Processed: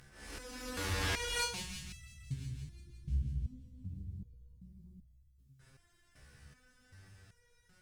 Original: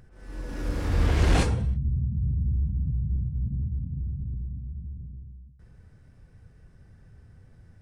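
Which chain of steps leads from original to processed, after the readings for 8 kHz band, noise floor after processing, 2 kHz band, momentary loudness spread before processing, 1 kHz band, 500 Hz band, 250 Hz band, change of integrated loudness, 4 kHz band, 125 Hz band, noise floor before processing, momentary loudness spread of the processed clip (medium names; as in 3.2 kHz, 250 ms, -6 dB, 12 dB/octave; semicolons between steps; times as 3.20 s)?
+1.5 dB, -69 dBFS, -2.5 dB, 18 LU, -7.0 dB, -10.5 dB, -14.5 dB, -11.5 dB, +0.5 dB, -15.5 dB, -55 dBFS, 24 LU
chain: tilt shelf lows -9 dB, about 1.1 kHz; in parallel at 0 dB: compression, threshold -41 dBFS, peak gain reduction 18.5 dB; on the sum: Chebyshev shaper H 6 -16 dB, 8 -17 dB, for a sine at -11 dBFS; on a send: feedback echo behind a high-pass 171 ms, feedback 69%, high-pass 2.3 kHz, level -11 dB; on the sum: resonator arpeggio 2.6 Hz 70–660 Hz; trim +4.5 dB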